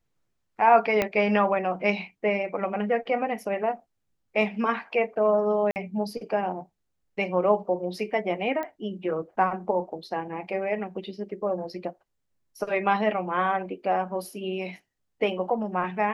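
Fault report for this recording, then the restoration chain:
1.02 pop -10 dBFS
5.71–5.76 gap 49 ms
8.63 pop -20 dBFS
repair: de-click; interpolate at 5.71, 49 ms

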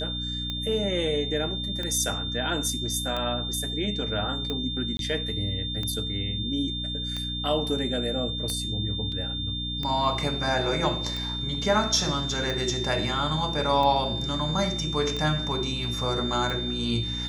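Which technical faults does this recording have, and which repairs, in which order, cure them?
hum 60 Hz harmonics 5 -34 dBFS
tick 45 rpm -18 dBFS
tone 3600 Hz -31 dBFS
4.97–4.99 gap 22 ms
9.12 gap 3.1 ms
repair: de-click; de-hum 60 Hz, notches 5; notch 3600 Hz, Q 30; interpolate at 4.97, 22 ms; interpolate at 9.12, 3.1 ms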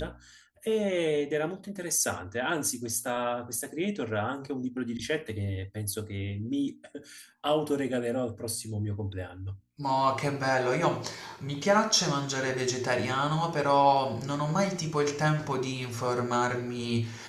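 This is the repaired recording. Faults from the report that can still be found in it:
none

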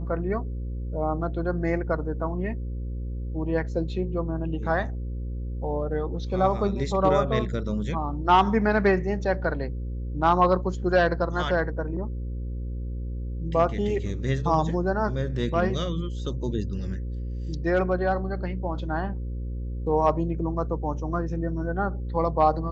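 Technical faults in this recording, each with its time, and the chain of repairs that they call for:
buzz 60 Hz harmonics 9 -31 dBFS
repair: de-hum 60 Hz, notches 9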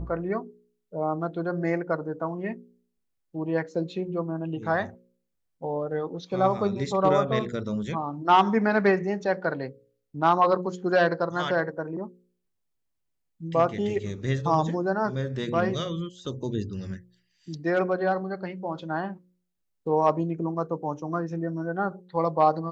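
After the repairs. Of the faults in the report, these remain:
none

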